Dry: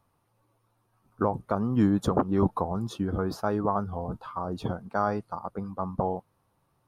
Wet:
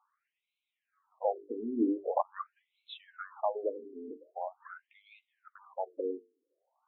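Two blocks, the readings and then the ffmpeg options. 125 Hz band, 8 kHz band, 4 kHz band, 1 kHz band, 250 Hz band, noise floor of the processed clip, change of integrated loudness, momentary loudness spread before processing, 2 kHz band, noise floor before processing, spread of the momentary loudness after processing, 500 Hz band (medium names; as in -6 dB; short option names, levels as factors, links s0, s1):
under -35 dB, under -30 dB, -6.5 dB, -8.0 dB, -10.0 dB, under -85 dBFS, -7.5 dB, 11 LU, -10.0 dB, -72 dBFS, 18 LU, -5.5 dB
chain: -af "bandreject=f=50:t=h:w=6,bandreject=f=100:t=h:w=6,bandreject=f=150:t=h:w=6,bandreject=f=200:t=h:w=6,bandreject=f=250:t=h:w=6,bandreject=f=300:t=h:w=6,bandreject=f=350:t=h:w=6,bandreject=f=400:t=h:w=6,bandreject=f=450:t=h:w=6,afftfilt=real='re*between(b*sr/1024,310*pow(3000/310,0.5+0.5*sin(2*PI*0.44*pts/sr))/1.41,310*pow(3000/310,0.5+0.5*sin(2*PI*0.44*pts/sr))*1.41)':imag='im*between(b*sr/1024,310*pow(3000/310,0.5+0.5*sin(2*PI*0.44*pts/sr))/1.41,310*pow(3000/310,0.5+0.5*sin(2*PI*0.44*pts/sr))*1.41)':win_size=1024:overlap=0.75"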